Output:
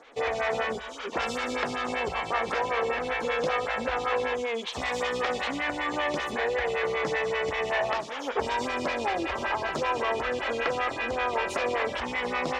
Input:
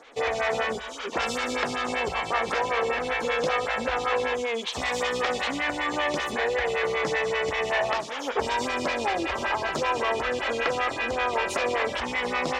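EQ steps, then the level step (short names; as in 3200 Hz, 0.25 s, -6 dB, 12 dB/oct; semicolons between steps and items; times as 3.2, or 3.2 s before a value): high shelf 4300 Hz -5.5 dB; -1.5 dB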